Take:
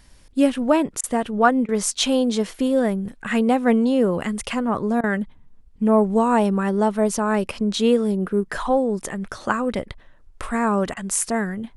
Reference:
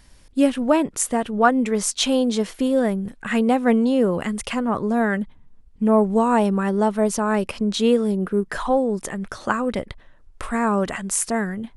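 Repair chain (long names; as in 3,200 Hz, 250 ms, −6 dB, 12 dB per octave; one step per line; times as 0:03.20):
repair the gap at 0:01.01/0:01.66/0:05.01/0:10.94, 25 ms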